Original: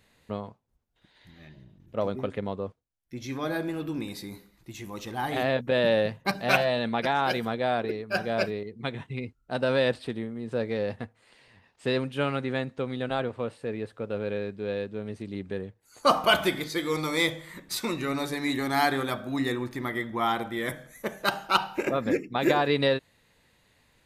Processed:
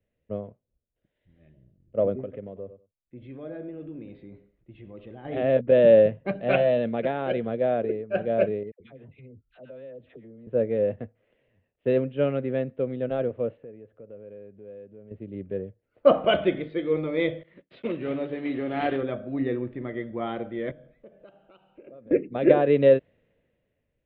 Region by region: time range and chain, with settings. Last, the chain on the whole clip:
0:02.21–0:05.25: low-pass filter 11,000 Hz + repeating echo 96 ms, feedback 18%, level −16 dB + downward compressor 2 to 1, threshold −37 dBFS
0:08.71–0:10.47: all-pass dispersion lows, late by 90 ms, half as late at 990 Hz + downward compressor 8 to 1, threshold −39 dBFS
0:13.57–0:15.11: low-pass filter 3,300 Hz + downward compressor 3 to 1, threshold −42 dBFS
0:17.43–0:19.02: one scale factor per block 3 bits + high-pass filter 120 Hz 6 dB per octave + downward expander −40 dBFS
0:20.71–0:22.11: parametric band 1,900 Hz −7 dB 0.48 octaves + downward compressor 3 to 1, threshold −46 dBFS + one half of a high-frequency compander decoder only
whole clip: Butterworth low-pass 3,200 Hz 48 dB per octave; low shelf with overshoot 720 Hz +7 dB, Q 3; multiband upward and downward expander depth 40%; level −6.5 dB

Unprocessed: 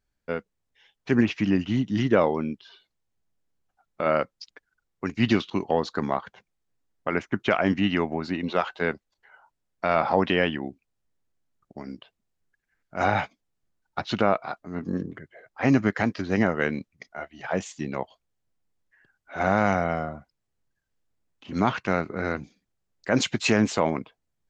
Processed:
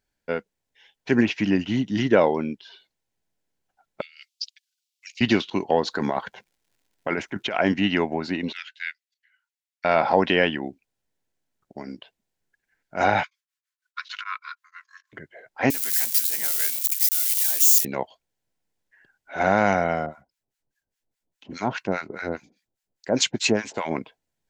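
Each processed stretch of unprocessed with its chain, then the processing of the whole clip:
0:04.01–0:05.21: parametric band 4,800 Hz +4 dB 0.99 octaves + compressor whose output falls as the input rises −26 dBFS, ratio −0.5 + Butterworth high-pass 2,600 Hz
0:05.86–0:07.55: compressor whose output falls as the input rises −28 dBFS + surface crackle 170 per second −61 dBFS
0:08.52–0:09.85: Butterworth high-pass 1,800 Hz + expander for the loud parts, over −48 dBFS
0:13.23–0:15.13: linear-phase brick-wall high-pass 1,000 Hz + tremolo along a rectified sine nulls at 6.4 Hz
0:15.70–0:17.85: spike at every zero crossing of −16.5 dBFS + first difference
0:20.06–0:23.91: high-shelf EQ 4,300 Hz +4.5 dB + two-band tremolo in antiphase 4.9 Hz, depth 100%, crossover 960 Hz
whole clip: low-shelf EQ 170 Hz −9 dB; notch filter 1,200 Hz, Q 5.1; level +4 dB

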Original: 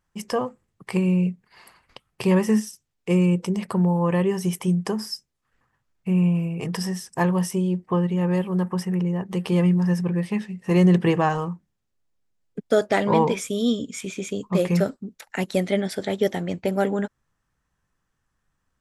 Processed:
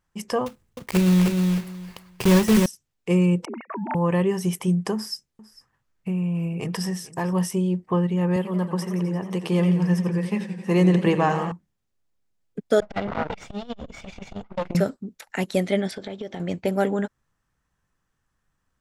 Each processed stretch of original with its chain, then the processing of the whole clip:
0:00.46–0:02.66: one scale factor per block 3 bits + low-shelf EQ 120 Hz +9 dB + repeating echo 310 ms, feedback 17%, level −4 dB
0:03.45–0:03.95: three sine waves on the formant tracks + high-pass filter 440 Hz + notch filter 2,900 Hz, Q 7.7
0:04.94–0:07.33: downward compressor, threshold −22 dBFS + single-tap delay 450 ms −19.5 dB
0:08.36–0:11.52: high-pass filter 150 Hz + feedback echo with a swinging delay time 87 ms, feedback 76%, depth 108 cents, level −12 dB
0:12.80–0:14.75: lower of the sound and its delayed copy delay 1.4 ms + high-frequency loss of the air 160 metres + saturating transformer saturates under 390 Hz
0:15.91–0:16.40: low-pass filter 4,900 Hz + notch filter 1,900 Hz + downward compressor 8 to 1, threshold −29 dBFS
whole clip: no processing

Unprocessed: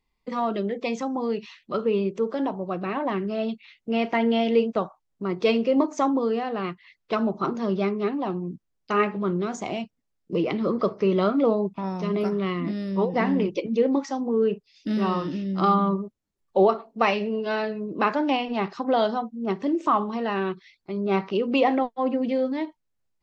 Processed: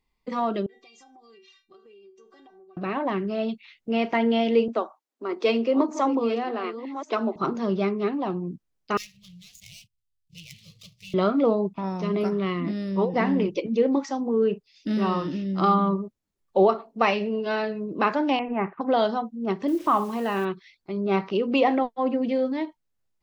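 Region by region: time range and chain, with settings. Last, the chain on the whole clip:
0:00.66–0:02.77: high-shelf EQ 3,200 Hz +10.5 dB + stiff-string resonator 380 Hz, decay 0.24 s, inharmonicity 0.002 + downward compressor 10 to 1, threshold −49 dBFS
0:04.68–0:07.36: delay that plays each chunk backwards 610 ms, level −11 dB + Chebyshev high-pass filter 230 Hz, order 6
0:08.97–0:11.14: running median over 15 samples + inverse Chebyshev band-stop filter 220–1,500 Hz + high-shelf EQ 4,100 Hz +4 dB
0:18.39–0:18.81: Butterworth low-pass 2,400 Hz 48 dB per octave + downward expander −39 dBFS
0:19.68–0:20.45: low-pass filter 4,900 Hz + flutter between parallel walls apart 11.1 metres, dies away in 0.23 s + bit-depth reduction 8 bits, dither none
whole clip: no processing

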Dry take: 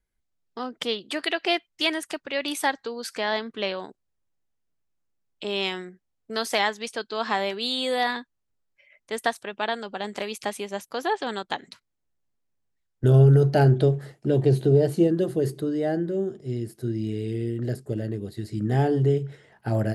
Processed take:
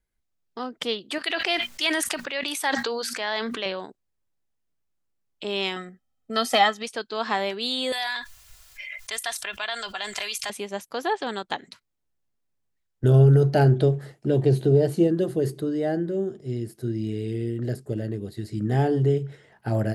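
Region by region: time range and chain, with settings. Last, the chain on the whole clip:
0:01.18–0:03.66: low-shelf EQ 470 Hz −10.5 dB + mains-hum notches 60/120/180/240 Hz + level that may fall only so fast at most 22 dB per second
0:05.76–0:06.83: comb filter 1.6 ms, depth 54% + hollow resonant body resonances 250/780/1,300/3,100 Hz, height 13 dB, ringing for 90 ms
0:07.92–0:10.50: guitar amp tone stack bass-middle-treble 10-0-10 + comb filter 2.9 ms, depth 55% + envelope flattener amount 70%
whole clip: no processing

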